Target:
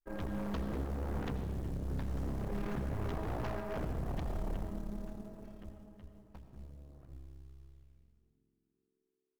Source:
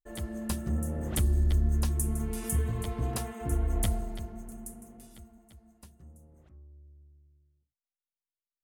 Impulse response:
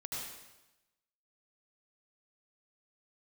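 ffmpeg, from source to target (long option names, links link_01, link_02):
-filter_complex "[0:a]aeval=exprs='if(lt(val(0),0),0.251*val(0),val(0))':channel_layout=same,lowpass=1900,bandreject=frequency=60:width_type=h:width=6,bandreject=frequency=120:width_type=h:width=6,bandreject=frequency=180:width_type=h:width=6,bandreject=frequency=240:width_type=h:width=6,bandreject=frequency=300:width_type=h:width=6,acompressor=threshold=-32dB:ratio=10,aresample=16000,aeval=exprs='0.0178*(abs(mod(val(0)/0.0178+3,4)-2)-1)':channel_layout=same,aresample=44100,acrusher=bits=7:mode=log:mix=0:aa=0.000001,asplit=5[link_01][link_02][link_03][link_04][link_05];[link_02]adelay=372,afreqshift=-120,volume=-24dB[link_06];[link_03]adelay=744,afreqshift=-240,volume=-28.6dB[link_07];[link_04]adelay=1116,afreqshift=-360,volume=-33.2dB[link_08];[link_05]adelay=1488,afreqshift=-480,volume=-37.7dB[link_09];[link_01][link_06][link_07][link_08][link_09]amix=inputs=5:normalize=0,asplit=2[link_10][link_11];[1:a]atrim=start_sample=2205[link_12];[link_11][link_12]afir=irnorm=-1:irlink=0,volume=-6.5dB[link_13];[link_10][link_13]amix=inputs=2:normalize=0,asetrate=40517,aresample=44100,volume=3dB"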